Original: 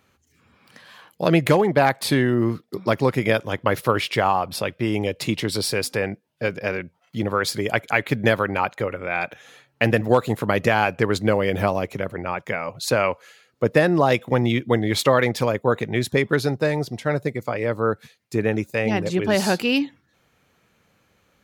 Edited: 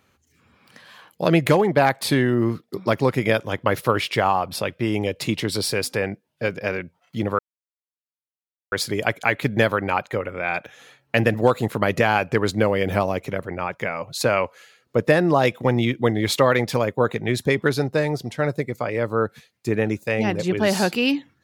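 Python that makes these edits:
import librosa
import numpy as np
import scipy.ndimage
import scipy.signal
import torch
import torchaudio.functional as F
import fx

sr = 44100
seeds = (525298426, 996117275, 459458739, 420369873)

y = fx.edit(x, sr, fx.insert_silence(at_s=7.39, length_s=1.33), tone=tone)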